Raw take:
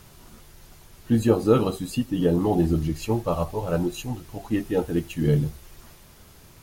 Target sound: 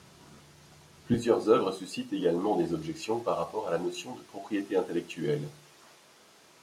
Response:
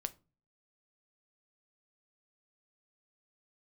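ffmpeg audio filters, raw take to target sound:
-filter_complex "[0:a]asetnsamples=nb_out_samples=441:pad=0,asendcmd='1.14 highpass f 350',highpass=110,lowpass=7900[link_01];[1:a]atrim=start_sample=2205,asetrate=48510,aresample=44100[link_02];[link_01][link_02]afir=irnorm=-1:irlink=0"

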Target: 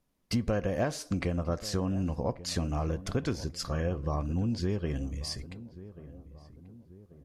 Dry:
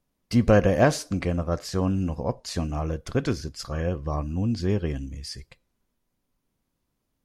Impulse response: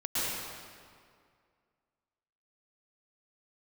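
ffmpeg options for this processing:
-filter_complex "[0:a]acompressor=threshold=-26dB:ratio=6,asplit=2[link_01][link_02];[link_02]adelay=1137,lowpass=frequency=1000:poles=1,volume=-15.5dB,asplit=2[link_03][link_04];[link_04]adelay=1137,lowpass=frequency=1000:poles=1,volume=0.49,asplit=2[link_05][link_06];[link_06]adelay=1137,lowpass=frequency=1000:poles=1,volume=0.49,asplit=2[link_07][link_08];[link_08]adelay=1137,lowpass=frequency=1000:poles=1,volume=0.49[link_09];[link_03][link_05][link_07][link_09]amix=inputs=4:normalize=0[link_10];[link_01][link_10]amix=inputs=2:normalize=0" -ar 32000 -c:a libvorbis -b:a 128k

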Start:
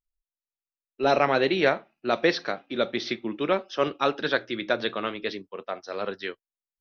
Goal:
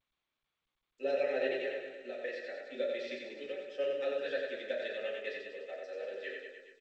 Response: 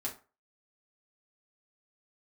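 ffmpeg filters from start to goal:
-filter_complex "[0:a]aemphasis=mode=production:type=75kf,asplit=3[link_01][link_02][link_03];[link_01]afade=type=out:start_time=1.53:duration=0.02[link_04];[link_02]acompressor=threshold=-29dB:ratio=3,afade=type=in:start_time=1.53:duration=0.02,afade=type=out:start_time=2.59:duration=0.02[link_05];[link_03]afade=type=in:start_time=2.59:duration=0.02[link_06];[link_04][link_05][link_06]amix=inputs=3:normalize=0,alimiter=limit=-12dB:level=0:latency=1:release=245,asettb=1/sr,asplit=3[link_07][link_08][link_09];[link_07]atrim=end=3.304[link_10];[link_08]atrim=start=3.3:end=3.75,asetpts=PTS-STARTPTS,afade=type=in:duration=0.004:curve=qsin,afade=type=out:start_time=0.446:duration=0.004:curve=qsin,acrossover=split=140|1500|3300[link_11][link_12][link_13][link_14];[link_11]acompressor=threshold=-48dB:ratio=4[link_15];[link_12]acompressor=threshold=-33dB:ratio=4[link_16];[link_13]acompressor=threshold=-41dB:ratio=4[link_17];[link_14]acompressor=threshold=-39dB:ratio=4[link_18];[link_15][link_16][link_17][link_18]amix=inputs=4:normalize=0[link_19];[link_09]atrim=start=3.746[link_20];[link_10][link_19]acrossfade=duration=0.004:curve1=hsin:curve2=qsin[link_21];[link_21][link_20]acrossfade=duration=0.004:curve1=qsin:curve2=hsin,asplit=3[link_22][link_23][link_24];[link_22]afade=type=out:start_time=5.77:duration=0.02[link_25];[link_23]asoftclip=type=hard:threshold=-26.5dB,afade=type=in:start_time=5.77:duration=0.02,afade=type=out:start_time=6.22:duration=0.02[link_26];[link_24]afade=type=in:start_time=6.22:duration=0.02[link_27];[link_25][link_26][link_27]amix=inputs=3:normalize=0,asplit=3[link_28][link_29][link_30];[link_28]bandpass=frequency=530:width_type=q:width=8,volume=0dB[link_31];[link_29]bandpass=frequency=1840:width_type=q:width=8,volume=-6dB[link_32];[link_30]bandpass=frequency=2480:width_type=q:width=8,volume=-9dB[link_33];[link_31][link_32][link_33]amix=inputs=3:normalize=0,aecho=1:1:90|189|297.9|417.7|549.5:0.631|0.398|0.251|0.158|0.1[link_34];[1:a]atrim=start_sample=2205,atrim=end_sample=6174[link_35];[link_34][link_35]afir=irnorm=-1:irlink=0,volume=-3dB" -ar 16000 -c:a g722

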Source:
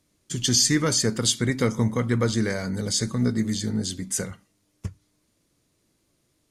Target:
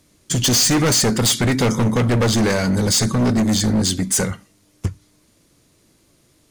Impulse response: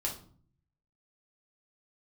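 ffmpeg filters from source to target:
-af "acontrast=47,volume=20dB,asoftclip=hard,volume=-20dB,volume=6dB"

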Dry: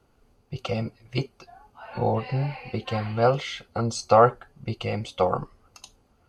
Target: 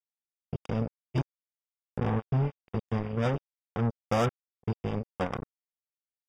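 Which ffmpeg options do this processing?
ffmpeg -i in.wav -filter_complex "[0:a]firequalizer=gain_entry='entry(270,0);entry(470,-10);entry(3400,-15)':delay=0.05:min_phase=1,asplit=2[link_01][link_02];[link_02]acompressor=threshold=-37dB:ratio=4,volume=0dB[link_03];[link_01][link_03]amix=inputs=2:normalize=0,acrusher=bits=3:mix=0:aa=0.5,asuperstop=centerf=4200:order=20:qfactor=5.2,volume=-3.5dB" out.wav

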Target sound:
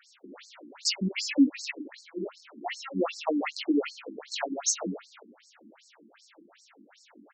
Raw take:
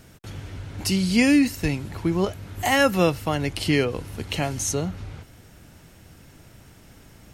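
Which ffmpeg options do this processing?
ffmpeg -i in.wav -filter_complex "[0:a]asplit=2[link_01][link_02];[link_02]aecho=0:1:132:0.355[link_03];[link_01][link_03]amix=inputs=2:normalize=0,flanger=delay=17:depth=5.2:speed=1.5,alimiter=limit=-16.5dB:level=0:latency=1:release=187,asplit=3[link_04][link_05][link_06];[link_04]afade=type=out:start_time=1.71:duration=0.02[link_07];[link_05]acompressor=threshold=-34dB:ratio=3,afade=type=in:start_time=1.71:duration=0.02,afade=type=out:start_time=2.95:duration=0.02[link_08];[link_06]afade=type=in:start_time=2.95:duration=0.02[link_09];[link_07][link_08][link_09]amix=inputs=3:normalize=0,afftfilt=real='re*between(b*sr/1024,250*pow(6000/250,0.5+0.5*sin(2*PI*2.6*pts/sr))/1.41,250*pow(6000/250,0.5+0.5*sin(2*PI*2.6*pts/sr))*1.41)':imag='im*between(b*sr/1024,250*pow(6000/250,0.5+0.5*sin(2*PI*2.6*pts/sr))/1.41,250*pow(6000/250,0.5+0.5*sin(2*PI*2.6*pts/sr))*1.41)':win_size=1024:overlap=0.75,volume=6dB" out.wav

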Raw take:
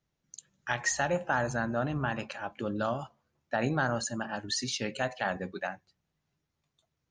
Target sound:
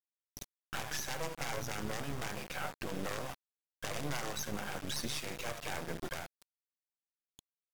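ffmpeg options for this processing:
ffmpeg -i in.wav -af "aresample=16000,aeval=exprs='(mod(11.9*val(0)+1,2)-1)/11.9':channel_layout=same,aresample=44100,equalizer=frequency=160:width=0.57:gain=-3.5,acompressor=threshold=-42dB:ratio=12,alimiter=level_in=15.5dB:limit=-24dB:level=0:latency=1:release=11,volume=-15.5dB,tremolo=f=160:d=0.571,acrusher=bits=7:dc=4:mix=0:aa=0.000001,bandreject=frequency=4500:width=21,asetrate=40517,aresample=44100,volume=16.5dB" out.wav

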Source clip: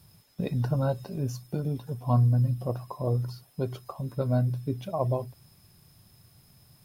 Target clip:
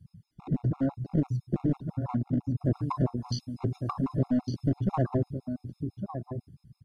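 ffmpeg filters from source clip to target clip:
ffmpeg -i in.wav -filter_complex "[0:a]asettb=1/sr,asplit=3[link_01][link_02][link_03];[link_01]atrim=end=2.654[link_04];[link_02]atrim=start=2.65:end=4.79,asetpts=PTS-STARTPTS,afade=type=in:duration=0.004:curve=qsin,afade=type=out:start_time=2.136:duration=0.004:curve=qsin,equalizer=frequency=5300:width=0.35:gain=10[link_05];[link_03]atrim=start=4.786[link_06];[link_04][link_05]acrossfade=duration=0.004:curve1=hsin:curve2=qsin[link_07];[link_07][link_06]acrossfade=duration=0.004:curve1=qsin:curve2=hsin,dynaudnorm=framelen=440:gausssize=7:maxgain=6dB,lowshelf=frequency=390:width_type=q:width=3:gain=6.5,alimiter=limit=-14.5dB:level=0:latency=1:release=198,afftfilt=real='re*lt(hypot(re,im),1)':imag='im*lt(hypot(re,im),1)':win_size=1024:overlap=0.75,afwtdn=0.0141,aecho=1:1:1155:0.335,aeval=exprs='clip(val(0),-1,0.0631)':channel_layout=same,lowpass=9100,afftfilt=real='re*gt(sin(2*PI*6*pts/sr)*(1-2*mod(floor(b*sr/1024/700),2)),0)':imag='im*gt(sin(2*PI*6*pts/sr)*(1-2*mod(floor(b*sr/1024/700),2)),0)':win_size=1024:overlap=0.75,volume=1.5dB" out.wav

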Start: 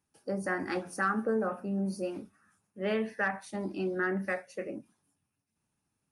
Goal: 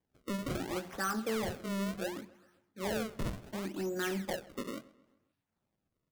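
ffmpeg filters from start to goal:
ffmpeg -i in.wav -filter_complex "[0:a]asplit=2[link_01][link_02];[link_02]aeval=exprs='0.0299*(abs(mod(val(0)/0.0299+3,4)-2)-1)':channel_layout=same,volume=-7dB[link_03];[link_01][link_03]amix=inputs=2:normalize=0,acrusher=samples=31:mix=1:aa=0.000001:lfo=1:lforange=49.6:lforate=0.7,asplit=2[link_04][link_05];[link_05]adelay=132,lowpass=frequency=4000:poles=1,volume=-20.5dB,asplit=2[link_06][link_07];[link_07]adelay=132,lowpass=frequency=4000:poles=1,volume=0.51,asplit=2[link_08][link_09];[link_09]adelay=132,lowpass=frequency=4000:poles=1,volume=0.51,asplit=2[link_10][link_11];[link_11]adelay=132,lowpass=frequency=4000:poles=1,volume=0.51[link_12];[link_04][link_06][link_08][link_10][link_12]amix=inputs=5:normalize=0,volume=-5.5dB" out.wav

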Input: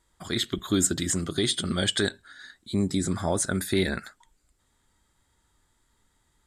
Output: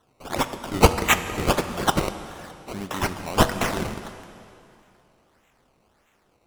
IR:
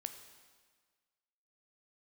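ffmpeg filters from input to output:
-filter_complex "[0:a]crystalizer=i=9.5:c=0,acrusher=samples=18:mix=1:aa=0.000001:lfo=1:lforange=18:lforate=1.6,asplit=2[link_01][link_02];[1:a]atrim=start_sample=2205,asetrate=25137,aresample=44100[link_03];[link_02][link_03]afir=irnorm=-1:irlink=0,volume=3.5dB[link_04];[link_01][link_04]amix=inputs=2:normalize=0,volume=-17.5dB"

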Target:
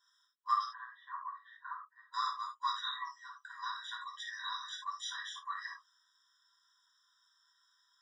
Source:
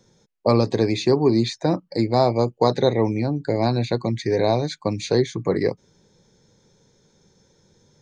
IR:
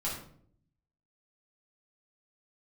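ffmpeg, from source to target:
-filter_complex "[0:a]asplit=3[link_01][link_02][link_03];[link_01]afade=type=out:start_time=0.63:duration=0.02[link_04];[link_02]lowpass=frequency=1600:width=0.5412,lowpass=frequency=1600:width=1.3066,afade=type=in:start_time=0.63:duration=0.02,afade=type=out:start_time=2.12:duration=0.02[link_05];[link_03]afade=type=in:start_time=2.12:duration=0.02[link_06];[link_04][link_05][link_06]amix=inputs=3:normalize=0[link_07];[1:a]atrim=start_sample=2205,atrim=end_sample=4410[link_08];[link_07][link_08]afir=irnorm=-1:irlink=0,afftfilt=real='re*eq(mod(floor(b*sr/1024/990),2),1)':imag='im*eq(mod(floor(b*sr/1024/990),2),1)':win_size=1024:overlap=0.75,volume=-6.5dB"

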